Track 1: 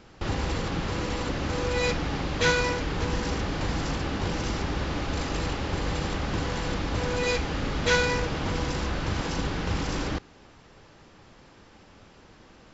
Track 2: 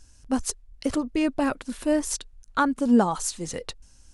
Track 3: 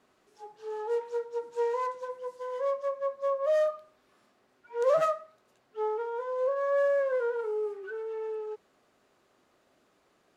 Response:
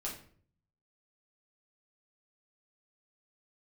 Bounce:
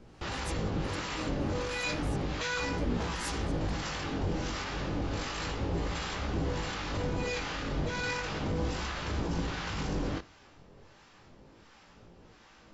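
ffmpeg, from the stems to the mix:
-filter_complex "[0:a]flanger=delay=17:depth=5.2:speed=0.33,alimiter=limit=-23.5dB:level=0:latency=1:release=12,volume=1.5dB,asplit=2[link_01][link_02];[link_02]volume=-15.5dB[link_03];[1:a]alimiter=limit=-16.5dB:level=0:latency=1,volume=-13dB[link_04];[3:a]atrim=start_sample=2205[link_05];[link_03][link_05]afir=irnorm=-1:irlink=0[link_06];[link_01][link_04][link_06]amix=inputs=3:normalize=0,acrossover=split=770[link_07][link_08];[link_07]aeval=exprs='val(0)*(1-0.7/2+0.7/2*cos(2*PI*1.4*n/s))':channel_layout=same[link_09];[link_08]aeval=exprs='val(0)*(1-0.7/2-0.7/2*cos(2*PI*1.4*n/s))':channel_layout=same[link_10];[link_09][link_10]amix=inputs=2:normalize=0"

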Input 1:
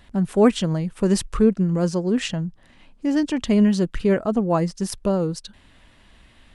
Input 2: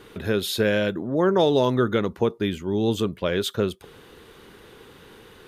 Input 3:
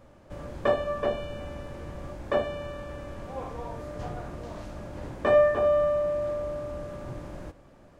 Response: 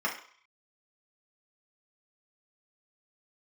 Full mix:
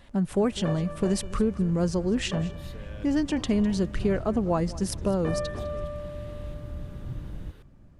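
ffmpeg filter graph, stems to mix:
-filter_complex "[0:a]acompressor=threshold=-18dB:ratio=6,volume=-2.5dB,asplit=3[link_01][link_02][link_03];[link_02]volume=-18.5dB[link_04];[1:a]acompressor=threshold=-30dB:ratio=4,adelay=2150,volume=-10dB[link_05];[2:a]asubboost=boost=6:cutoff=220,volume=-9dB[link_06];[link_03]apad=whole_len=336227[link_07];[link_05][link_07]sidechaincompress=threshold=-37dB:ratio=8:attack=16:release=816[link_08];[link_04]aecho=0:1:204|408|612|816|1020:1|0.34|0.116|0.0393|0.0134[link_09];[link_01][link_08][link_06][link_09]amix=inputs=4:normalize=0"

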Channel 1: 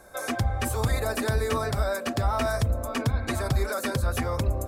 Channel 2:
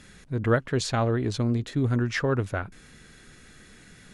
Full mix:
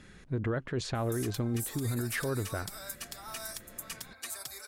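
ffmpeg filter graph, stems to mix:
ffmpeg -i stem1.wav -i stem2.wav -filter_complex "[0:a]aderivative,adelay=950,volume=-0.5dB[link_01];[1:a]highshelf=frequency=3800:gain=-8,alimiter=limit=-21dB:level=0:latency=1:release=22,equalizer=frequency=350:width_type=o:width=0.26:gain=3.5,volume=-2dB[link_02];[link_01][link_02]amix=inputs=2:normalize=0,alimiter=limit=-24dB:level=0:latency=1:release=168" out.wav

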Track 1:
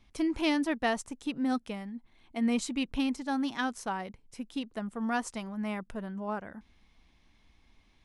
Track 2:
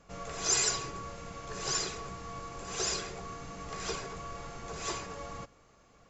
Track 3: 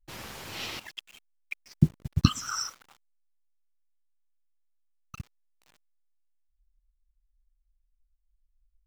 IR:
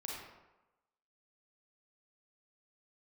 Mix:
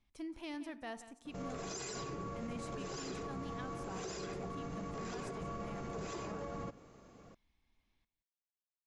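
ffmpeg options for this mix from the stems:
-filter_complex "[0:a]volume=-15.5dB,asplit=3[link_01][link_02][link_03];[link_02]volume=-14.5dB[link_04];[link_03]volume=-14dB[link_05];[1:a]equalizer=frequency=250:width_type=o:width=2.7:gain=11,acompressor=threshold=-34dB:ratio=2,adynamicequalizer=threshold=0.00282:dfrequency=3000:dqfactor=0.7:tfrequency=3000:tqfactor=0.7:attack=5:release=100:ratio=0.375:range=2.5:mode=cutabove:tftype=highshelf,adelay=1250,volume=-2.5dB[link_06];[3:a]atrim=start_sample=2205[link_07];[link_04][link_07]afir=irnorm=-1:irlink=0[link_08];[link_05]aecho=0:1:175:1[link_09];[link_01][link_06][link_08][link_09]amix=inputs=4:normalize=0,alimiter=level_in=10dB:limit=-24dB:level=0:latency=1:release=48,volume=-10dB"

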